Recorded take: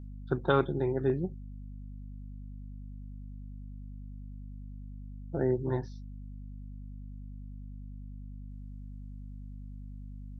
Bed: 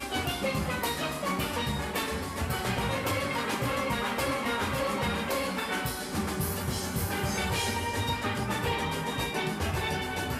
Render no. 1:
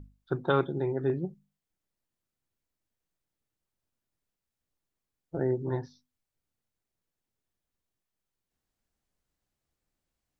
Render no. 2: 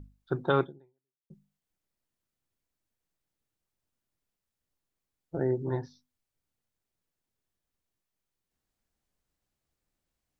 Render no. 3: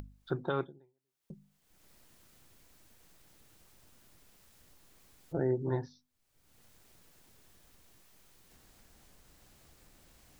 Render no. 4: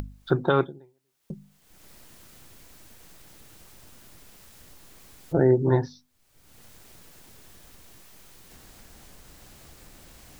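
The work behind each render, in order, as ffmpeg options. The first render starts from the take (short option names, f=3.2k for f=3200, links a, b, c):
-af "bandreject=f=50:t=h:w=6,bandreject=f=100:t=h:w=6,bandreject=f=150:t=h:w=6,bandreject=f=200:t=h:w=6,bandreject=f=250:t=h:w=6"
-filter_complex "[0:a]asplit=2[a][b];[a]atrim=end=1.3,asetpts=PTS-STARTPTS,afade=t=out:st=0.62:d=0.68:c=exp[c];[b]atrim=start=1.3,asetpts=PTS-STARTPTS,afade=t=in:d=0.004:c=hsin[d];[c][d]concat=n=2:v=0:a=1"
-af "acompressor=mode=upward:threshold=-41dB:ratio=2.5,alimiter=limit=-20dB:level=0:latency=1:release=494"
-af "volume=11.5dB"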